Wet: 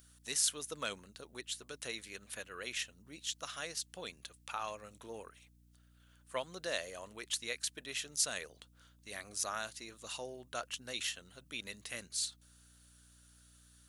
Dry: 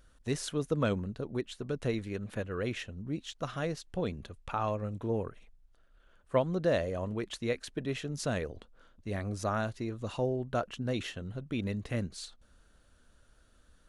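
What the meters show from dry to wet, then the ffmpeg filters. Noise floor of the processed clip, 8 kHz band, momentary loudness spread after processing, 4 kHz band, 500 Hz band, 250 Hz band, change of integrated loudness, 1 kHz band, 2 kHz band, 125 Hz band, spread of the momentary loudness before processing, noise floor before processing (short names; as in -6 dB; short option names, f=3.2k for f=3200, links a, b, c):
-65 dBFS, +10.0 dB, 15 LU, +4.5 dB, -12.5 dB, -18.5 dB, -5.0 dB, -7.0 dB, -1.0 dB, -23.0 dB, 9 LU, -64 dBFS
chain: -af "aderivative,aeval=exprs='val(0)+0.0002*(sin(2*PI*60*n/s)+sin(2*PI*2*60*n/s)/2+sin(2*PI*3*60*n/s)/3+sin(2*PI*4*60*n/s)/4+sin(2*PI*5*60*n/s)/5)':c=same,volume=10dB"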